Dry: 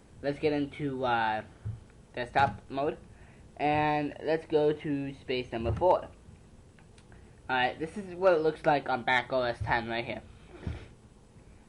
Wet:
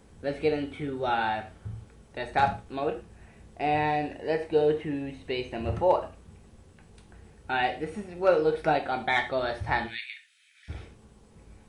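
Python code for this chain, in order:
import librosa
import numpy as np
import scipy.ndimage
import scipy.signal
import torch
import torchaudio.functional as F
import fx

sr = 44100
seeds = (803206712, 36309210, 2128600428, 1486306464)

y = fx.steep_highpass(x, sr, hz=1700.0, slope=48, at=(9.86, 10.68), fade=0.02)
y = fx.rev_gated(y, sr, seeds[0], gate_ms=140, shape='falling', drr_db=5.0)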